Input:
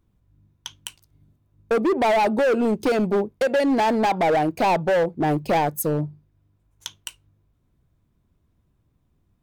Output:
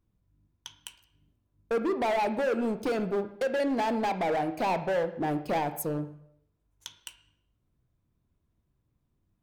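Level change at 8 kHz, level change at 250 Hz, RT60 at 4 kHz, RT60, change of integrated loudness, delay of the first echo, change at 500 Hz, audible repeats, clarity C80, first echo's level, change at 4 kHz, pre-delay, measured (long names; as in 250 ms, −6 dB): −8.5 dB, −8.0 dB, 0.65 s, 0.70 s, −8.0 dB, no echo audible, −8.0 dB, no echo audible, 15.0 dB, no echo audible, −8.0 dB, 7 ms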